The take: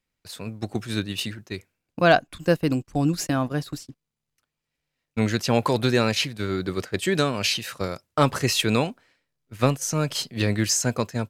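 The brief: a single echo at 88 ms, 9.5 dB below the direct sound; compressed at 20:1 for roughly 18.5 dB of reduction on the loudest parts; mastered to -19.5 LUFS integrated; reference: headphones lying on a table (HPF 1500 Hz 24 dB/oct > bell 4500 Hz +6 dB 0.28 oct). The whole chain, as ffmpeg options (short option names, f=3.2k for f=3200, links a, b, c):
-af "acompressor=threshold=-31dB:ratio=20,highpass=f=1.5k:w=0.5412,highpass=f=1.5k:w=1.3066,equalizer=f=4.5k:t=o:w=0.28:g=6,aecho=1:1:88:0.335,volume=19.5dB"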